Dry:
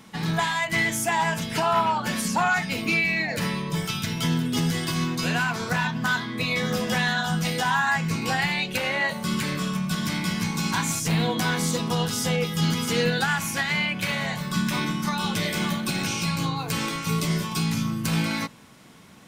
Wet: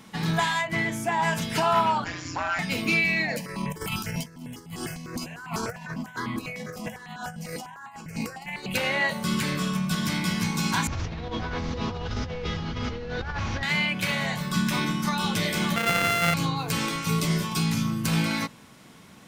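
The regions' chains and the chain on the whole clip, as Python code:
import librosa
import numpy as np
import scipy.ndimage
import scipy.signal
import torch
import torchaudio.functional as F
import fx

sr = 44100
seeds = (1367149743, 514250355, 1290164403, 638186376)

y = fx.highpass(x, sr, hz=46.0, slope=12, at=(0.61, 1.22), fade=0.02)
y = fx.high_shelf(y, sr, hz=2500.0, db=-11.5, at=(0.61, 1.22), fade=0.02)
y = fx.dmg_tone(y, sr, hz=2300.0, level_db=-52.0, at=(0.61, 1.22), fade=0.02)
y = fx.chain(y, sr, fx.self_delay(depth_ms=0.063),
    fx.cheby_ripple(hz=7200.0, ripple_db=6),
    fx.ring_mod(carrier_hz=87.0), at=(2.04, 2.59))
y = fx.chain(y, sr, fx.peak_eq(hz=3600.0, db=-14.0, octaves=0.23),
    fx.over_compress(threshold_db=-30.0, ratio=-0.5),
    fx.phaser_held(hz=10.0, low_hz=360.0, high_hz=1600.0), at=(3.36, 8.74))
y = fx.chain(y, sr, fx.delta_mod(bps=32000, step_db=-41.0),
    fx.low_shelf_res(hz=110.0, db=13.0, q=3.0),
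    fx.over_compress(threshold_db=-31.0, ratio=-1.0), at=(10.87, 13.63))
y = fx.chain(y, sr, fx.sample_sort(block=64),
    fx.band_shelf(hz=2000.0, db=8.5, octaves=1.7),
    fx.doubler(ms=30.0, db=-13.5), at=(15.76, 16.34))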